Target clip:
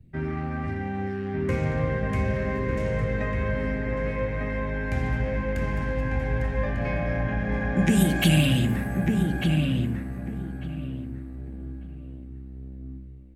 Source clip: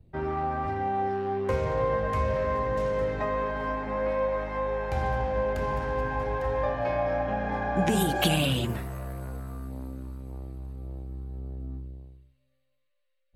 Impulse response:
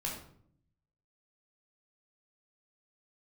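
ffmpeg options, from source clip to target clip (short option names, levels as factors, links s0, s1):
-filter_complex "[0:a]equalizer=f=125:t=o:w=1:g=6,equalizer=f=250:t=o:w=1:g=8,equalizer=f=500:t=o:w=1:g=-5,equalizer=f=1000:t=o:w=1:g=-9,equalizer=f=2000:t=o:w=1:g=9,equalizer=f=4000:t=o:w=1:g=-3,equalizer=f=8000:t=o:w=1:g=4,asplit=2[s0][s1];[s1]adelay=1197,lowpass=f=1900:p=1,volume=0.708,asplit=2[s2][s3];[s3]adelay=1197,lowpass=f=1900:p=1,volume=0.23,asplit=2[s4][s5];[s5]adelay=1197,lowpass=f=1900:p=1,volume=0.23[s6];[s0][s2][s4][s6]amix=inputs=4:normalize=0,asplit=2[s7][s8];[1:a]atrim=start_sample=2205[s9];[s8][s9]afir=irnorm=-1:irlink=0,volume=0.282[s10];[s7][s10]amix=inputs=2:normalize=0,volume=0.75"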